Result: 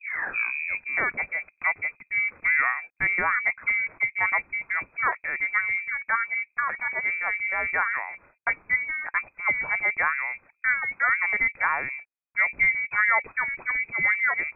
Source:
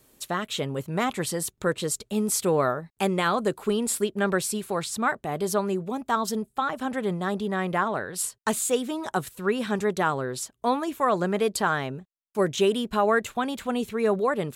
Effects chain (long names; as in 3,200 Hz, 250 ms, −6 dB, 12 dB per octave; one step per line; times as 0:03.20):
turntable start at the beginning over 1.06 s
voice inversion scrambler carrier 2,500 Hz